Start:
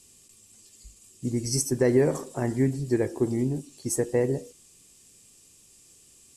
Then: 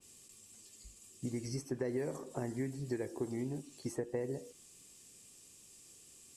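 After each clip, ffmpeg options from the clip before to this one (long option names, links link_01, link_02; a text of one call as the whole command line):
ffmpeg -i in.wav -filter_complex "[0:a]lowshelf=frequency=100:gain=-6.5,acrossover=split=670|3500[link_01][link_02][link_03];[link_01]acompressor=threshold=-35dB:ratio=4[link_04];[link_02]acompressor=threshold=-48dB:ratio=4[link_05];[link_03]acompressor=threshold=-50dB:ratio=4[link_06];[link_04][link_05][link_06]amix=inputs=3:normalize=0,adynamicequalizer=threshold=0.00126:dfrequency=3300:dqfactor=0.7:tfrequency=3300:tqfactor=0.7:attack=5:release=100:ratio=0.375:range=2.5:mode=cutabove:tftype=highshelf,volume=-2dB" out.wav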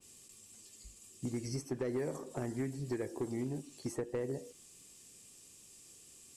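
ffmpeg -i in.wav -af "asoftclip=type=hard:threshold=-30.5dB,volume=1dB" out.wav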